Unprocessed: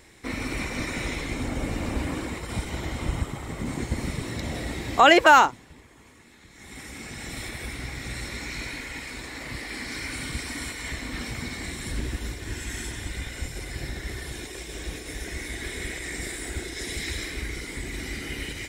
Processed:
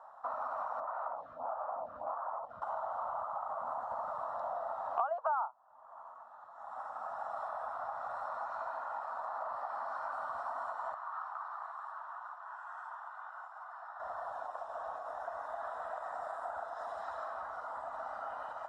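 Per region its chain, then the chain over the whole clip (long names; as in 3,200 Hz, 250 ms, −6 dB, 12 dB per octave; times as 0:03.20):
0:00.80–0:02.62: head-to-tape spacing loss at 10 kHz 25 dB + phaser with staggered stages 1.6 Hz
0:10.94–0:14.00: high-pass filter 1,000 Hz 24 dB per octave + high-shelf EQ 2,900 Hz −11.5 dB
whole clip: elliptic band-pass filter 640–1,300 Hz, stop band 40 dB; downward compressor 5 to 1, threshold −47 dBFS; level +11.5 dB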